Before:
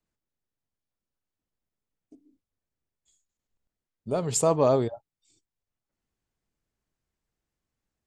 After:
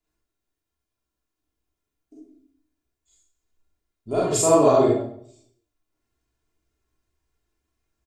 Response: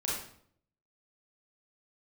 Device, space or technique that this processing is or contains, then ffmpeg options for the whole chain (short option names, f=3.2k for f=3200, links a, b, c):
microphone above a desk: -filter_complex "[0:a]aecho=1:1:2.9:0.6[a];[1:a]atrim=start_sample=2205[b];[a][b]afir=irnorm=-1:irlink=0"